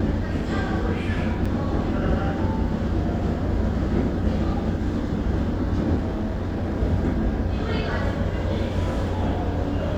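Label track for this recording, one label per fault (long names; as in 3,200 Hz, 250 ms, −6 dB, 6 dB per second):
1.450000	1.460000	drop-out 5.1 ms
5.950000	6.740000	clipping −21.5 dBFS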